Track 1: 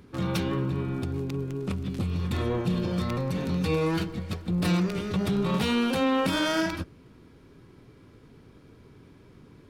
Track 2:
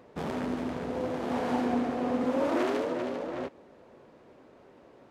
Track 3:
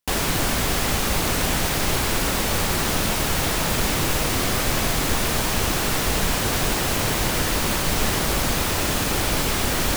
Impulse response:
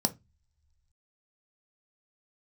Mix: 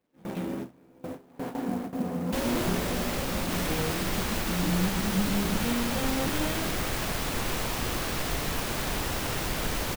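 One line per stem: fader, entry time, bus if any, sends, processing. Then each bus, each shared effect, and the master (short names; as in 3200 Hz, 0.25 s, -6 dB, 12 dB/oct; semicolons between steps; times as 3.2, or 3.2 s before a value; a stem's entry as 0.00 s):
-13.0 dB, 0.00 s, send -5 dB, no echo send, flange 1.1 Hz, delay 2.6 ms, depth 3.4 ms, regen +62%; LFO low-pass square 0.36 Hz 290–2800 Hz
-5.5 dB, 0.00 s, no send, echo send -9 dB, bit-crush 9-bit
-9.5 dB, 2.25 s, no send, echo send -3.5 dB, dry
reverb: on, pre-delay 3 ms
echo: echo 1.181 s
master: gate with hold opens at -24 dBFS; clock jitter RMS 0.027 ms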